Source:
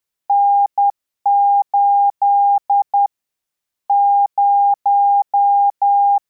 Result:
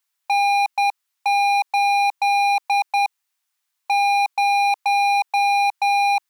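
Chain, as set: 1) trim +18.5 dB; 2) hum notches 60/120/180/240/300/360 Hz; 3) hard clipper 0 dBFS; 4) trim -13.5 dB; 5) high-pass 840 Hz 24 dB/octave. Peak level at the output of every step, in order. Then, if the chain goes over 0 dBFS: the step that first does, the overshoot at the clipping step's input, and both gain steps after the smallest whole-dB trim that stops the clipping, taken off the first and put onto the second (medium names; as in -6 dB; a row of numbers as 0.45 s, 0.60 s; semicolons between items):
+9.0 dBFS, +9.0 dBFS, 0.0 dBFS, -13.5 dBFS, -13.0 dBFS; step 1, 9.0 dB; step 1 +9.5 dB, step 4 -4.5 dB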